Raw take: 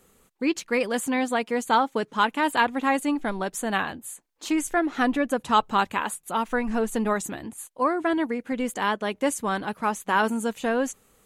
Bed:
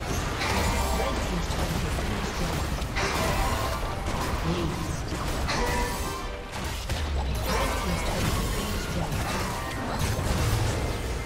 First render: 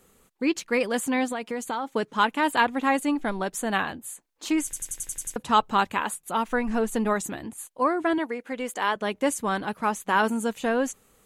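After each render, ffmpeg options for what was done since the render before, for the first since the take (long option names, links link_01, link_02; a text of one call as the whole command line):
ffmpeg -i in.wav -filter_complex "[0:a]asettb=1/sr,asplit=3[link_01][link_02][link_03];[link_01]atrim=end=1.314[link_04];[link_02]atrim=start=1.31:end=1.87,asetpts=PTS-STARTPTS,afade=type=in:duration=0.004:curve=qsin,afade=type=out:start_time=0.556:duration=0.004:curve=qsin,acompressor=threshold=-26dB:ratio=5:attack=3.2:release=140:knee=1:detection=peak[link_05];[link_03]atrim=start=1.866[link_06];[link_04][link_05]acrossfade=duration=0.004:curve1=hsin:curve2=qsin[link_07];[link_07][link_06]acrossfade=duration=0.004:curve1=qsin:curve2=hsin,asettb=1/sr,asplit=3[link_08][link_09][link_10];[link_08]atrim=end=8.184[link_11];[link_09]atrim=start=8.18:end=8.96,asetpts=PTS-STARTPTS,afade=type=in:duration=0.004:curve=qsin,afade=type=out:start_time=0.776:duration=0.004:curve=qsin,bass=frequency=250:gain=-14,treble=frequency=4000:gain=-1[link_12];[link_10]atrim=start=8.956[link_13];[link_11][link_12]acrossfade=duration=0.004:curve1=hsin:curve2=qsin[link_14];[link_14][link_13]acrossfade=duration=0.004:curve1=qsin:curve2=hsin,asplit=9[link_15][link_16][link_17][link_18][link_19][link_20][link_21][link_22][link_23];[link_15]atrim=end=4.732[link_24];[link_16]atrim=start=4.638:end=4.732[link_25];[link_17]atrim=start=4.638:end=4.732[link_26];[link_18]atrim=start=4.638:end=4.732[link_27];[link_19]atrim=start=4.638:end=4.732[link_28];[link_20]atrim=start=4.638:end=4.732[link_29];[link_21]atrim=start=4.638:end=4.732[link_30];[link_22]atrim=start=4.638:end=4.732[link_31];[link_23]atrim=start=5.358[link_32];[link_24][link_25]acrossfade=duration=0.004:curve1=hsin:curve2=hsin[link_33];[link_33][link_26]acrossfade=duration=0.004:curve1=hsin:curve2=hsin[link_34];[link_34][link_27]acrossfade=duration=0.004:curve1=hsin:curve2=hsin[link_35];[link_35][link_28]acrossfade=duration=0.004:curve1=hsin:curve2=hsin[link_36];[link_36][link_29]acrossfade=duration=0.004:curve1=hsin:curve2=hsin[link_37];[link_37][link_30]acrossfade=duration=0.004:curve1=hsin:curve2=hsin[link_38];[link_38][link_31]acrossfade=duration=0.004:curve1=hsin:curve2=hsin[link_39];[link_39][link_32]acrossfade=duration=0.004:curve1=hsin:curve2=hsin" out.wav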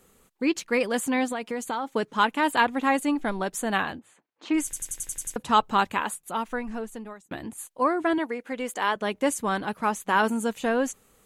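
ffmpeg -i in.wav -filter_complex "[0:a]asplit=3[link_01][link_02][link_03];[link_01]afade=type=out:start_time=3.99:duration=0.02[link_04];[link_02]highpass=140,lowpass=2700,afade=type=in:start_time=3.99:duration=0.02,afade=type=out:start_time=4.53:duration=0.02[link_05];[link_03]afade=type=in:start_time=4.53:duration=0.02[link_06];[link_04][link_05][link_06]amix=inputs=3:normalize=0,asplit=2[link_07][link_08];[link_07]atrim=end=7.31,asetpts=PTS-STARTPTS,afade=type=out:start_time=5.96:duration=1.35[link_09];[link_08]atrim=start=7.31,asetpts=PTS-STARTPTS,afade=type=in:duration=0.004:curve=hsin[link_10];[link_09][link_10]concat=n=2:v=0:a=1" out.wav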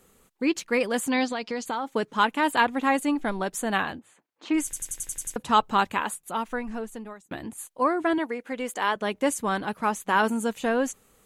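ffmpeg -i in.wav -filter_complex "[0:a]asettb=1/sr,asplit=3[link_01][link_02][link_03];[link_01]atrim=end=1.104[link_04];[link_02]atrim=start=1.1:end=1.66,asetpts=PTS-STARTPTS,afade=type=in:duration=0.004:curve=qsin,afade=type=out:start_time=0.556:duration=0.004:curve=qsin,lowpass=frequency=4900:width_type=q:width=4[link_05];[link_03]atrim=start=1.656[link_06];[link_04][link_05]acrossfade=duration=0.004:curve1=hsin:curve2=qsin[link_07];[link_07][link_06]acrossfade=duration=0.004:curve1=qsin:curve2=hsin" out.wav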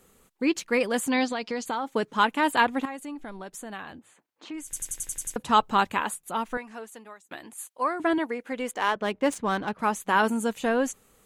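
ffmpeg -i in.wav -filter_complex "[0:a]asettb=1/sr,asplit=3[link_01][link_02][link_03];[link_01]atrim=end=2.854[link_04];[link_02]atrim=start=2.85:end=4.73,asetpts=PTS-STARTPTS,afade=type=in:duration=0.004:curve=qsin,afade=type=out:start_time=1.876:duration=0.004:curve=qsin,acompressor=threshold=-44dB:ratio=2:attack=3.2:release=140:knee=1:detection=peak[link_05];[link_03]atrim=start=4.726[link_06];[link_04][link_05]acrossfade=duration=0.004:curve1=hsin:curve2=qsin[link_07];[link_07][link_06]acrossfade=duration=0.004:curve1=qsin:curve2=hsin,asettb=1/sr,asplit=3[link_08][link_09][link_10];[link_08]atrim=end=6.574[link_11];[link_09]atrim=start=6.57:end=8,asetpts=PTS-STARTPTS,afade=type=in:duration=0.004:curve=qsin,afade=type=out:start_time=1.426:duration=0.004:curve=qsin,highpass=frequency=820:poles=1[link_12];[link_10]atrim=start=7.996[link_13];[link_11][link_12]acrossfade=duration=0.004:curve1=hsin:curve2=qsin[link_14];[link_14][link_13]acrossfade=duration=0.004:curve1=qsin:curve2=hsin,asettb=1/sr,asplit=3[link_15][link_16][link_17];[link_15]atrim=end=8.714[link_18];[link_16]atrim=start=8.71:end=9.79,asetpts=PTS-STARTPTS,afade=type=in:duration=0.004:curve=qsin,afade=type=out:start_time=1.076:duration=0.004:curve=qsin,adynamicsmooth=sensitivity=6.5:basefreq=3000[link_19];[link_17]atrim=start=9.786[link_20];[link_18][link_19]acrossfade=duration=0.004:curve1=hsin:curve2=qsin[link_21];[link_21][link_20]acrossfade=duration=0.004:curve1=qsin:curve2=hsin" out.wav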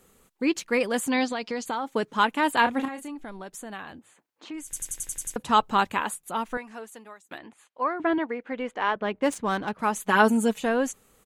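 ffmpeg -i in.wav -filter_complex "[0:a]asplit=3[link_01][link_02][link_03];[link_01]afade=type=out:start_time=2.63:duration=0.02[link_04];[link_02]asplit=2[link_05][link_06];[link_06]adelay=30,volume=-7dB[link_07];[link_05][link_07]amix=inputs=2:normalize=0,afade=type=in:start_time=2.63:duration=0.02,afade=type=out:start_time=3.09:duration=0.02[link_08];[link_03]afade=type=in:start_time=3.09:duration=0.02[link_09];[link_04][link_08][link_09]amix=inputs=3:normalize=0,asettb=1/sr,asplit=3[link_10][link_11][link_12];[link_10]atrim=end=7.384[link_13];[link_11]atrim=start=7.38:end=9.22,asetpts=PTS-STARTPTS,afade=type=in:duration=0.004:curve=qsin,afade=type=out:start_time=1.836:duration=0.004:curve=qsin,lowpass=3000[link_14];[link_12]atrim=start=9.216[link_15];[link_13][link_14]acrossfade=duration=0.004:curve1=hsin:curve2=qsin[link_16];[link_16][link_15]acrossfade=duration=0.004:curve1=qsin:curve2=hsin,asettb=1/sr,asplit=3[link_17][link_18][link_19];[link_17]atrim=end=9.954[link_20];[link_18]atrim=start=9.95:end=10.6,asetpts=PTS-STARTPTS,afade=type=in:duration=0.004:curve=qsin,afade=type=out:start_time=0.646:duration=0.004:curve=qsin,aecho=1:1:4.7:0.85,atrim=end_sample=28665[link_21];[link_19]atrim=start=10.596[link_22];[link_20][link_21]acrossfade=duration=0.004:curve1=hsin:curve2=qsin[link_23];[link_23][link_22]acrossfade=duration=0.004:curve1=qsin:curve2=hsin" out.wav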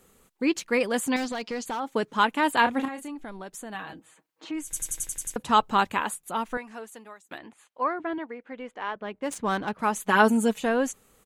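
ffmpeg -i in.wav -filter_complex "[0:a]asettb=1/sr,asplit=3[link_01][link_02][link_03];[link_01]atrim=end=1.164[link_04];[link_02]atrim=start=1.16:end=1.8,asetpts=PTS-STARTPTS,afade=type=in:duration=0.004:curve=qsin,afade=type=out:start_time=0.636:duration=0.004:curve=qsin,asoftclip=type=hard:threshold=-26.5dB[link_05];[link_03]atrim=start=1.796[link_06];[link_04][link_05]acrossfade=duration=0.004:curve1=hsin:curve2=qsin[link_07];[link_07][link_06]acrossfade=duration=0.004:curve1=qsin:curve2=hsin,asettb=1/sr,asplit=3[link_08][link_09][link_10];[link_08]atrim=end=3.744[link_11];[link_09]atrim=start=3.74:end=5.07,asetpts=PTS-STARTPTS,afade=type=in:duration=0.004:curve=qsin,afade=type=out:start_time=1.326:duration=0.004:curve=qsin,aecho=1:1:6.3:0.71,atrim=end_sample=58653[link_12];[link_10]atrim=start=5.066[link_13];[link_11][link_12]acrossfade=duration=0.004:curve1=hsin:curve2=qsin[link_14];[link_14][link_13]acrossfade=duration=0.004:curve1=qsin:curve2=hsin,asplit=3[link_15][link_16][link_17];[link_15]atrim=end=7.992[link_18];[link_16]atrim=start=7.988:end=9.312,asetpts=PTS-STARTPTS,volume=-7dB[link_19];[link_17]atrim=start=9.308[link_20];[link_18][link_19]acrossfade=duration=0.004:curve1=hsin:curve2=hsin[link_21];[link_21][link_20]acrossfade=duration=0.004:curve1=hsin:curve2=hsin" out.wav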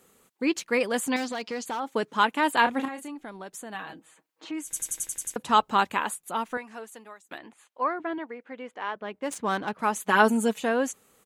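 ffmpeg -i in.wav -af "highpass=frequency=180:poles=1" out.wav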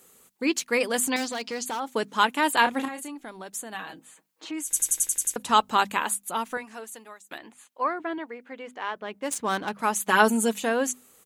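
ffmpeg -i in.wav -af "highshelf=frequency=4300:gain=9,bandreject=frequency=50:width_type=h:width=6,bandreject=frequency=100:width_type=h:width=6,bandreject=frequency=150:width_type=h:width=6,bandreject=frequency=200:width_type=h:width=6,bandreject=frequency=250:width_type=h:width=6" out.wav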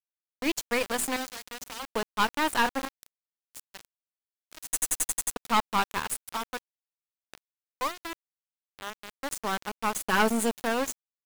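ffmpeg -i in.wav -af "aeval=exprs='val(0)*gte(abs(val(0)),0.0501)':channel_layout=same,aeval=exprs='(tanh(5.62*val(0)+0.65)-tanh(0.65))/5.62':channel_layout=same" out.wav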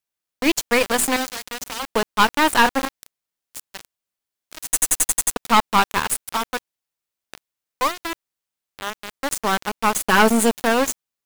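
ffmpeg -i in.wav -af "volume=9.5dB,alimiter=limit=-3dB:level=0:latency=1" out.wav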